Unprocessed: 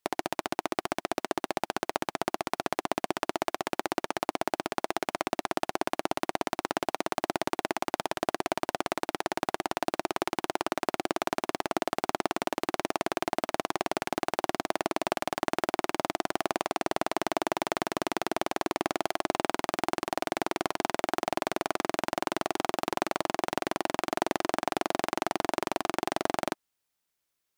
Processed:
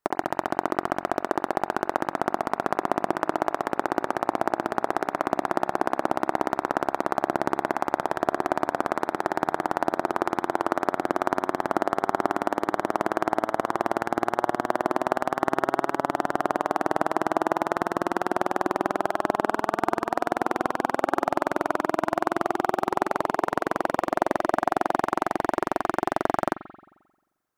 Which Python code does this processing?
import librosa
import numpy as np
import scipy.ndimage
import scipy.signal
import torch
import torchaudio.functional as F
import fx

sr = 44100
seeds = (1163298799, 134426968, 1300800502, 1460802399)

y = fx.high_shelf_res(x, sr, hz=2000.0, db=-9.0, q=1.5)
y = fx.rev_spring(y, sr, rt60_s=1.1, pass_ms=(44,), chirp_ms=65, drr_db=12.5)
y = y * librosa.db_to_amplitude(4.5)